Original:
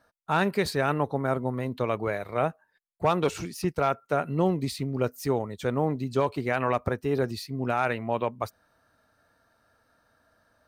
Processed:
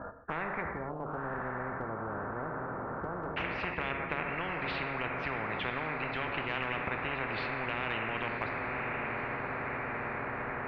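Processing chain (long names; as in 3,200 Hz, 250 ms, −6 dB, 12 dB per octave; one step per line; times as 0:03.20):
Butterworth low-pass 1,400 Hz 36 dB per octave, from 0:00.60 540 Hz, from 0:03.36 2,200 Hz
downward compressor 2.5 to 1, threshold −26 dBFS, peak gain reduction 5.5 dB
brickwall limiter −21 dBFS, peak gain reduction 5.5 dB
feedback delay with all-pass diffusion 1,040 ms, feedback 53%, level −13.5 dB
reverb whose tail is shaped and stops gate 310 ms falling, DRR 6 dB
every bin compressed towards the loudest bin 10 to 1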